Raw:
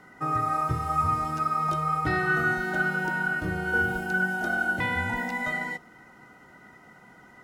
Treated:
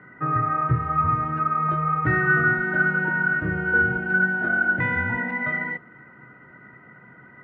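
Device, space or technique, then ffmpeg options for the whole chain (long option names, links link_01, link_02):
bass cabinet: -af "highpass=72,equalizer=frequency=130:width_type=q:width=4:gain=9,equalizer=frequency=790:width_type=q:width=4:gain=-9,equalizer=frequency=1700:width_type=q:width=4:gain=7,lowpass=frequency=2200:width=0.5412,lowpass=frequency=2200:width=1.3066,volume=3dB"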